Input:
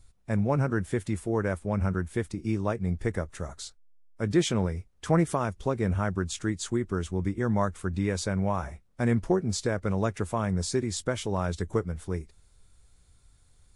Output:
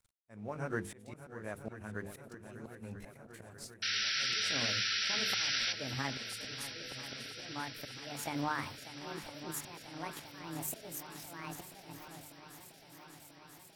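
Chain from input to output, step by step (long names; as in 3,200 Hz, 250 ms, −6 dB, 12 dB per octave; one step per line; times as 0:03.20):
pitch glide at a constant tempo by +11.5 semitones starting unshifted
low-shelf EQ 200 Hz −10 dB
mains-hum notches 50/100/150/200/250/300/350/400/450/500 Hz
downward compressor 6 to 1, threshold −29 dBFS, peak gain reduction 8.5 dB
dead-zone distortion −59 dBFS
volume swells 478 ms
sound drawn into the spectrogram noise, 0:03.82–0:05.73, 1,300–5,900 Hz −34 dBFS
feedback echo with a long and a short gap by turns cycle 989 ms, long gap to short 1.5 to 1, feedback 72%, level −13.5 dB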